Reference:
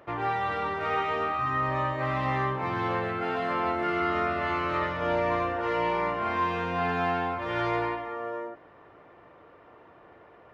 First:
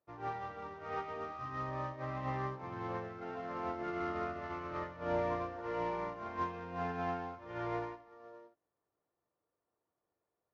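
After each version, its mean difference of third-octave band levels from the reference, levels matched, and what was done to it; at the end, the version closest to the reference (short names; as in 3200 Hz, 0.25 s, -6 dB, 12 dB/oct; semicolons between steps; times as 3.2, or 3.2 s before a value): 5.0 dB: CVSD 32 kbps; LPF 1100 Hz 6 dB/oct; upward expander 2.5:1, over -46 dBFS; gain -4 dB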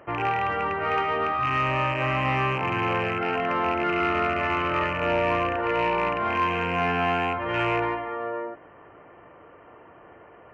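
1.5 dB: rattling part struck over -36 dBFS, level -22 dBFS; brick-wall FIR low-pass 3200 Hz; in parallel at -5 dB: soft clip -24.5 dBFS, distortion -15 dB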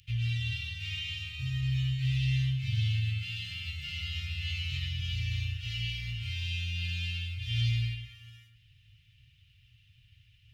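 19.0 dB: Chebyshev band-stop 120–2800 Hz, order 4; dynamic EQ 120 Hz, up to +4 dB, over -53 dBFS, Q 3.6; gain +8.5 dB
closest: second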